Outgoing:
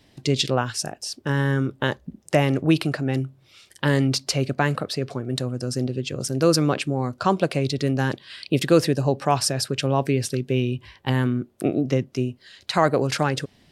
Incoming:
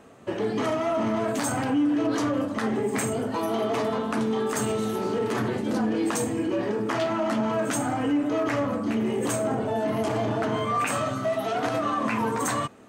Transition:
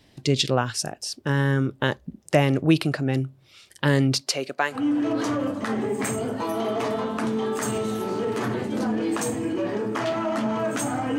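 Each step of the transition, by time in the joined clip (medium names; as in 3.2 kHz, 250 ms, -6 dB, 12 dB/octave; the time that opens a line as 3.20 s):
outgoing
4.20–4.86 s: high-pass 290 Hz -> 760 Hz
4.78 s: go over to incoming from 1.72 s, crossfade 0.16 s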